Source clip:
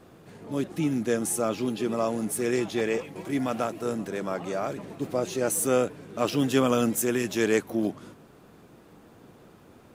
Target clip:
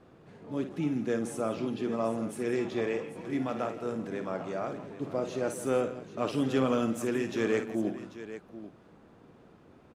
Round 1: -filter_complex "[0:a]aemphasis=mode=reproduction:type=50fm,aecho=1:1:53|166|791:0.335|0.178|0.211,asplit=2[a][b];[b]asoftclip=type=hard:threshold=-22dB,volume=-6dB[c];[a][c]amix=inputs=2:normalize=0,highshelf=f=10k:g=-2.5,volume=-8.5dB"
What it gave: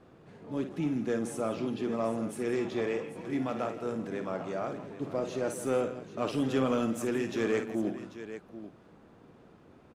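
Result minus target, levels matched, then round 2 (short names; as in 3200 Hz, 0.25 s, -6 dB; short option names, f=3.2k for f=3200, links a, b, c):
hard clip: distortion +11 dB
-filter_complex "[0:a]aemphasis=mode=reproduction:type=50fm,aecho=1:1:53|166|791:0.335|0.178|0.211,asplit=2[a][b];[b]asoftclip=type=hard:threshold=-15.5dB,volume=-6dB[c];[a][c]amix=inputs=2:normalize=0,highshelf=f=10k:g=-2.5,volume=-8.5dB"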